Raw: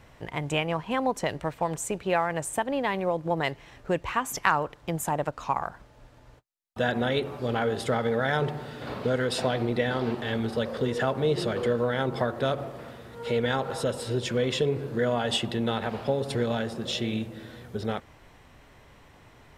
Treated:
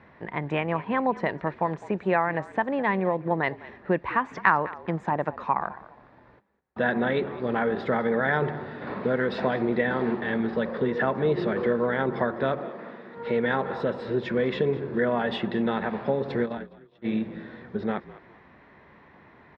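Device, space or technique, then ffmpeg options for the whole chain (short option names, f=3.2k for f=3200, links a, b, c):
frequency-shifting delay pedal into a guitar cabinet: -filter_complex "[0:a]asplit=3[a][b][c];[a]afade=t=out:st=16.43:d=0.02[d];[b]agate=range=-42dB:threshold=-25dB:ratio=16:detection=peak,afade=t=in:st=16.43:d=0.02,afade=t=out:st=17.04:d=0.02[e];[c]afade=t=in:st=17.04:d=0.02[f];[d][e][f]amix=inputs=3:normalize=0,asplit=4[g][h][i][j];[h]adelay=206,afreqshift=-50,volume=-18dB[k];[i]adelay=412,afreqshift=-100,volume=-28.5dB[l];[j]adelay=618,afreqshift=-150,volume=-38.9dB[m];[g][k][l][m]amix=inputs=4:normalize=0,highpass=93,equalizer=f=110:t=q:w=4:g=-7,equalizer=f=200:t=q:w=4:g=7,equalizer=f=360:t=q:w=4:g=4,equalizer=f=1k:t=q:w=4:g=4,equalizer=f=1.8k:t=q:w=4:g=6,equalizer=f=3k:t=q:w=4:g=-9,lowpass=f=3.4k:w=0.5412,lowpass=f=3.4k:w=1.3066,asettb=1/sr,asplit=3[n][o][p];[n]atrim=end=12.594[q];[o]atrim=start=12.59:end=13.17,asetpts=PTS-STARTPTS,afade=t=in:d=0.004:c=qsin,afade=t=out:st=0.576:d=0.004:c=qsin,highpass=f=170:w=0.5412,highpass=f=170:w=1.3066[r];[p]atrim=start=13.166[s];[q][r]acrossfade=d=0.004:c1=hsin:c2=qsin[t];[t][s]acrossfade=d=0.004:c1=qsin:c2=hsin"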